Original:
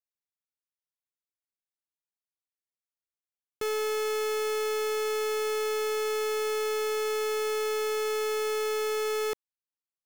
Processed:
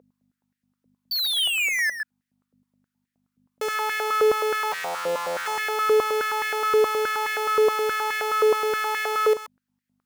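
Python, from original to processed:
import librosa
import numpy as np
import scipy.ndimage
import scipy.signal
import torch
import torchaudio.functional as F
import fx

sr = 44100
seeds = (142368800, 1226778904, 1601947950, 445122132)

p1 = fx.sample_sort(x, sr, block=256, at=(4.71, 5.45), fade=0.02)
p2 = fx.fold_sine(p1, sr, drive_db=8, ceiling_db=-28.5)
p3 = p1 + (p2 * 10.0 ** (1.0 / 20.0))
p4 = fx.spec_paint(p3, sr, seeds[0], shape='fall', start_s=1.11, length_s=0.79, low_hz=1700.0, high_hz=4600.0, level_db=-31.0)
p5 = fx.leveller(p4, sr, passes=5)
p6 = p5 + fx.echo_single(p5, sr, ms=130, db=-9.5, dry=0)
p7 = fx.add_hum(p6, sr, base_hz=50, snr_db=17)
y = fx.filter_held_highpass(p7, sr, hz=9.5, low_hz=490.0, high_hz=1800.0)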